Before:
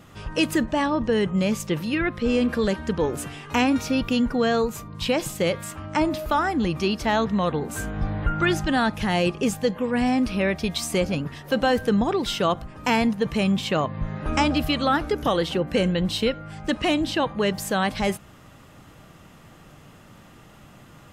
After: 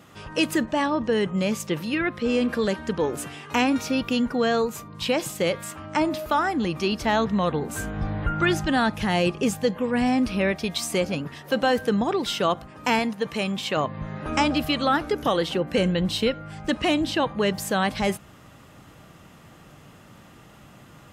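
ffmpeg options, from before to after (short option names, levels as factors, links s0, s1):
-af "asetnsamples=n=441:p=0,asendcmd='6.92 highpass f 47;10.52 highpass f 180;12.99 highpass f 390;13.77 highpass f 140;15.78 highpass f 45',highpass=f=170:p=1"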